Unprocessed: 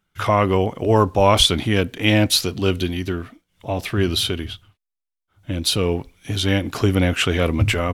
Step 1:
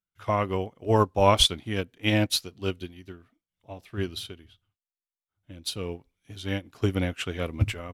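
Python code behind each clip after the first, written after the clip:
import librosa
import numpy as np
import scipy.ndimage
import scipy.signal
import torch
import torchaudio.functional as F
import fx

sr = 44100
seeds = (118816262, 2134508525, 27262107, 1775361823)

y = fx.upward_expand(x, sr, threshold_db=-26.0, expansion=2.5)
y = y * 10.0 ** (-3.0 / 20.0)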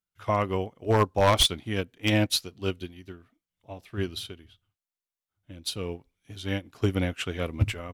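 y = 10.0 ** (-12.5 / 20.0) * (np.abs((x / 10.0 ** (-12.5 / 20.0) + 3.0) % 4.0 - 2.0) - 1.0)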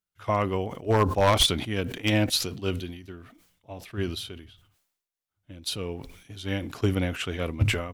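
y = fx.sustainer(x, sr, db_per_s=72.0)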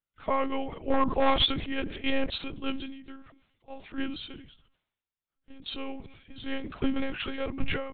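y = fx.lpc_monotone(x, sr, seeds[0], pitch_hz=270.0, order=10)
y = y * 10.0 ** (-2.0 / 20.0)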